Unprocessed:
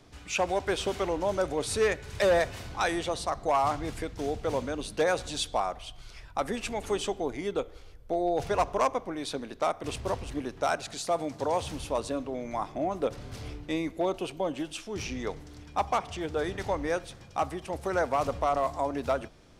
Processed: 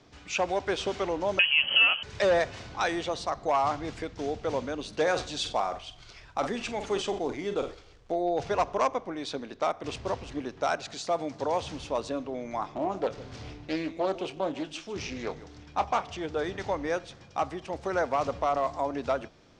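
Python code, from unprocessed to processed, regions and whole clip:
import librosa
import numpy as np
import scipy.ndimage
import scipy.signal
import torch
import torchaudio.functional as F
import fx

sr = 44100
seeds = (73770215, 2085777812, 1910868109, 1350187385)

y = fx.chain(x, sr, fx.peak_eq(hz=190.0, db=15.0, octaves=1.3),
    fx.freq_invert(carrier_hz=3100),
    fx.band_squash(depth_pct=100), at=(1.39, 2.03))
y = fx.chain(y, sr, fx.quant_companded(bits=6),
    fx.room_flutter(wall_m=7.9, rt60_s=0.21),
    fx.sustainer(db_per_s=110.0), at=(4.88, 8.12))
y = fx.chain(y, sr, fx.doubler(ms=26.0, db=-12.0),
    fx.echo_single(ms=152, db=-16.5),
    fx.doppler_dist(depth_ms=0.29), at=(12.6, 16.03))
y = scipy.signal.sosfilt(scipy.signal.butter(4, 6800.0, 'lowpass', fs=sr, output='sos'), y)
y = fx.low_shelf(y, sr, hz=65.0, db=-11.0)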